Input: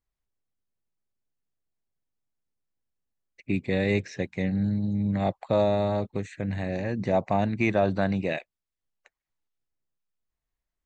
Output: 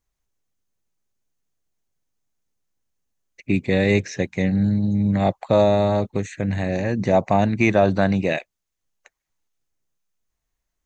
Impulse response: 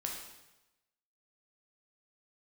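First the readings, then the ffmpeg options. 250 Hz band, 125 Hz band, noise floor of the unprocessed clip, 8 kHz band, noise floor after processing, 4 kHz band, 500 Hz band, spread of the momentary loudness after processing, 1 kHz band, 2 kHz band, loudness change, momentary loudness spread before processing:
+6.5 dB, +6.5 dB, below −85 dBFS, can't be measured, −81 dBFS, +7.0 dB, +6.5 dB, 8 LU, +6.5 dB, +6.5 dB, +6.5 dB, 8 LU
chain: -af "equalizer=frequency=6400:width=4.6:gain=7.5,volume=6.5dB"

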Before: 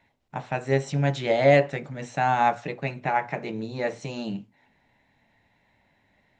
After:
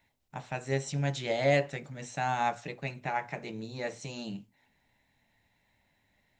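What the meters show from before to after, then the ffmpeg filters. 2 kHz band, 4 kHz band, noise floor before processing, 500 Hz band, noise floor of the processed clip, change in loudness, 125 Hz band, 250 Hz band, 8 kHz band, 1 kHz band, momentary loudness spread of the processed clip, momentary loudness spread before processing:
−6.0 dB, −3.0 dB, −67 dBFS, −8.5 dB, −73 dBFS, −7.5 dB, −6.5 dB, −7.5 dB, can't be measured, −8.0 dB, 13 LU, 15 LU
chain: -af "lowshelf=frequency=99:gain=7.5,crystalizer=i=3:c=0,volume=-9dB"

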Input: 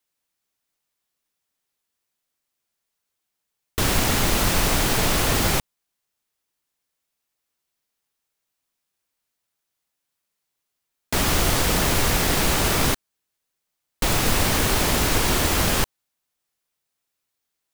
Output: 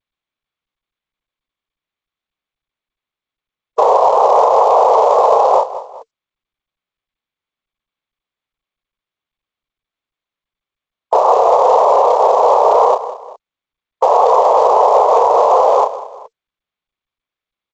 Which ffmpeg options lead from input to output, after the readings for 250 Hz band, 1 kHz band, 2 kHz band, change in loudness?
below −10 dB, +18.0 dB, below −10 dB, +9.5 dB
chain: -filter_complex "[0:a]afftfilt=real='re*gte(hypot(re,im),0.0501)':imag='im*gte(hypot(re,im),0.0501)':win_size=1024:overlap=0.75,asuperpass=centerf=700:order=12:qfactor=1.1,acrossover=split=660[link_01][link_02];[link_01]acrusher=bits=4:mode=log:mix=0:aa=0.000001[link_03];[link_03][link_02]amix=inputs=2:normalize=0,tremolo=f=5.2:d=0.32,asplit=2[link_04][link_05];[link_05]adelay=31,volume=-6dB[link_06];[link_04][link_06]amix=inputs=2:normalize=0,aecho=1:1:191|382:0.133|0.024,areverse,acompressor=mode=upward:threshold=-48dB:ratio=2.5,areverse,alimiter=level_in=24dB:limit=-1dB:release=50:level=0:latency=1,volume=-1dB" -ar 16000 -c:a g722

